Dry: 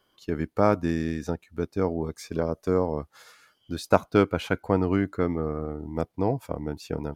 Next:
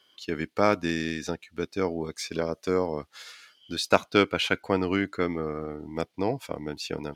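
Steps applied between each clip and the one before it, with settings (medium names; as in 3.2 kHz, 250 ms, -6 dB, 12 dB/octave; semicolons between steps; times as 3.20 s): frequency weighting D; trim -1 dB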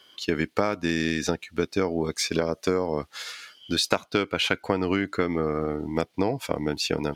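compression 16:1, threshold -27 dBFS, peak gain reduction 15.5 dB; trim +8 dB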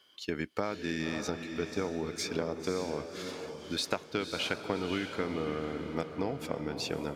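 echo that smears into a reverb 559 ms, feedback 42%, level -7 dB; trim -9 dB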